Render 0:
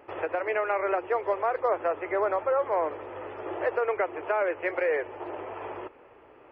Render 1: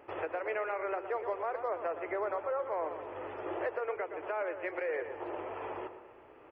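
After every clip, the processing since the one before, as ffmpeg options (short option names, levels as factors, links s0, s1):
-filter_complex "[0:a]asplit=2[s0][s1];[s1]adelay=117,lowpass=f=2100:p=1,volume=0.316,asplit=2[s2][s3];[s3]adelay=117,lowpass=f=2100:p=1,volume=0.48,asplit=2[s4][s5];[s5]adelay=117,lowpass=f=2100:p=1,volume=0.48,asplit=2[s6][s7];[s7]adelay=117,lowpass=f=2100:p=1,volume=0.48,asplit=2[s8][s9];[s9]adelay=117,lowpass=f=2100:p=1,volume=0.48[s10];[s0][s2][s4][s6][s8][s10]amix=inputs=6:normalize=0,alimiter=limit=0.075:level=0:latency=1:release=417,volume=0.708"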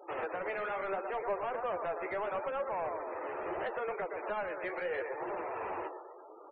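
-filter_complex "[0:a]asplit=2[s0][s1];[s1]highpass=f=720:p=1,volume=7.94,asoftclip=type=tanh:threshold=0.0562[s2];[s0][s2]amix=inputs=2:normalize=0,lowpass=f=2600:p=1,volume=0.501,afftfilt=real='re*gte(hypot(re,im),0.00891)':imag='im*gte(hypot(re,im),0.00891)':win_size=1024:overlap=0.75,flanger=delay=4.8:depth=9.5:regen=41:speed=0.75:shape=triangular"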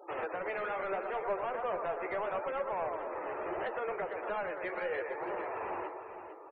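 -af "aecho=1:1:454|908|1362:0.316|0.0759|0.0182"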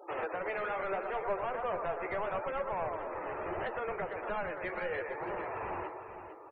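-af "asubboost=boost=3.5:cutoff=200,volume=1.12"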